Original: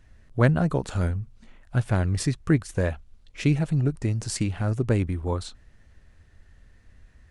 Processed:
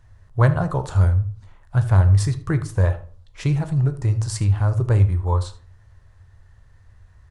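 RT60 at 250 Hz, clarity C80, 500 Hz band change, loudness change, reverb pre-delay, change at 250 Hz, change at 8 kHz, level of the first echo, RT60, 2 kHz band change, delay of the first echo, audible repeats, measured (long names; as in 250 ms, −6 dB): 0.55 s, 19.5 dB, +0.5 dB, +5.5 dB, 12 ms, −2.0 dB, 0.0 dB, −18.0 dB, 0.45 s, 0.0 dB, 78 ms, 1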